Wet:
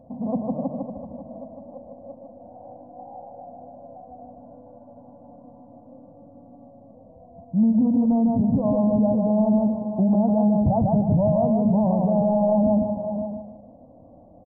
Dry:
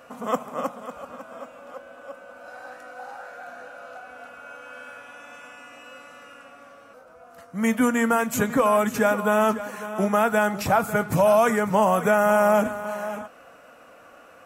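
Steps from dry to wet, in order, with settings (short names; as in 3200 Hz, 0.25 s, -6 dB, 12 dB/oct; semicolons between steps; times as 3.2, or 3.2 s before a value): Gaussian blur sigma 17 samples; on a send: feedback echo 0.152 s, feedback 33%, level -3.5 dB; on the sum: limiter -22.5 dBFS, peak gain reduction 10.5 dB; comb 1.2 ms, depth 75%; gain +8.5 dB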